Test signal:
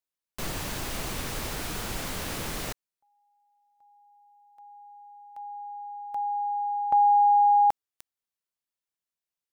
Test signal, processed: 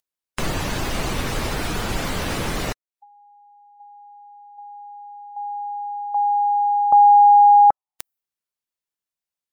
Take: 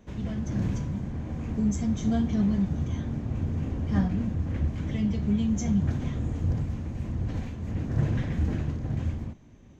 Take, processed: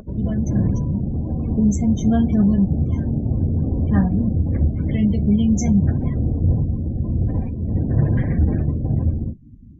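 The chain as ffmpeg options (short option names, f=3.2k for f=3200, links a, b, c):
-filter_complex "[0:a]asplit=2[a][b];[b]alimiter=limit=-20dB:level=0:latency=1:release=377,volume=-1dB[c];[a][c]amix=inputs=2:normalize=0,acompressor=mode=upward:threshold=-44dB:ratio=2.5:attack=50:release=151:knee=2.83:detection=peak,afftdn=nr=35:nf=-36,volume=4.5dB"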